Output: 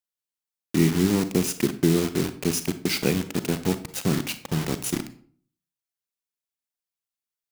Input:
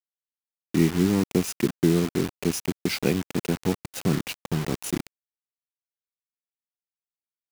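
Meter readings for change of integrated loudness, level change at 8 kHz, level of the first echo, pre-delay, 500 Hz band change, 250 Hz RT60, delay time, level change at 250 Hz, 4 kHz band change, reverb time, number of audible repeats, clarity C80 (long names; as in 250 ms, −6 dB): +1.0 dB, +4.0 dB, no echo audible, 32 ms, +0.5 dB, 0.65 s, no echo audible, +0.5 dB, +3.0 dB, 0.50 s, no echo audible, 17.5 dB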